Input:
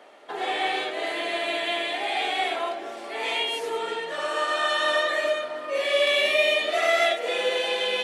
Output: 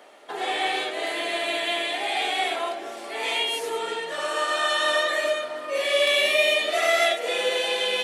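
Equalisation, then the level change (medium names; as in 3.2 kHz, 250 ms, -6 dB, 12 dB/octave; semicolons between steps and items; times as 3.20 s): treble shelf 6.4 kHz +9.5 dB; 0.0 dB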